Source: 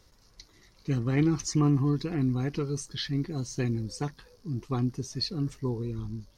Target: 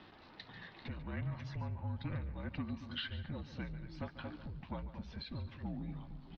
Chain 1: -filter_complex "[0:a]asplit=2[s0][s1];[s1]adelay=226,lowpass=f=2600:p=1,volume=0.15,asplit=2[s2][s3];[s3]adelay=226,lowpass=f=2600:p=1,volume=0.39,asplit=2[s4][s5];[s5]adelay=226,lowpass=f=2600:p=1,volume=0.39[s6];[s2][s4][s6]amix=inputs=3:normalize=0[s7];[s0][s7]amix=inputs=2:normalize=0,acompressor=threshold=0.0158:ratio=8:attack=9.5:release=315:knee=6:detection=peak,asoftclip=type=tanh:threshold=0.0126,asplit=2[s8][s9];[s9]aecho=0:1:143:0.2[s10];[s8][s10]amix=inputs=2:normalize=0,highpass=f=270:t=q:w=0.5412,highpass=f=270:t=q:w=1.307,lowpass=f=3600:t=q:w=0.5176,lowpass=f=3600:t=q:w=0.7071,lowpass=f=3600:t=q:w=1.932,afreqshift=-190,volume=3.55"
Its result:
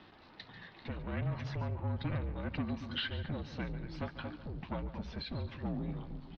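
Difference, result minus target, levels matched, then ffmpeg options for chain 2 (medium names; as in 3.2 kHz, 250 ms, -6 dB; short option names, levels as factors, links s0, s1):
compression: peak gain reduction -6.5 dB
-filter_complex "[0:a]asplit=2[s0][s1];[s1]adelay=226,lowpass=f=2600:p=1,volume=0.15,asplit=2[s2][s3];[s3]adelay=226,lowpass=f=2600:p=1,volume=0.39,asplit=2[s4][s5];[s5]adelay=226,lowpass=f=2600:p=1,volume=0.39[s6];[s2][s4][s6]amix=inputs=3:normalize=0[s7];[s0][s7]amix=inputs=2:normalize=0,acompressor=threshold=0.00668:ratio=8:attack=9.5:release=315:knee=6:detection=peak,asoftclip=type=tanh:threshold=0.0126,asplit=2[s8][s9];[s9]aecho=0:1:143:0.2[s10];[s8][s10]amix=inputs=2:normalize=0,highpass=f=270:t=q:w=0.5412,highpass=f=270:t=q:w=1.307,lowpass=f=3600:t=q:w=0.5176,lowpass=f=3600:t=q:w=0.7071,lowpass=f=3600:t=q:w=1.932,afreqshift=-190,volume=3.55"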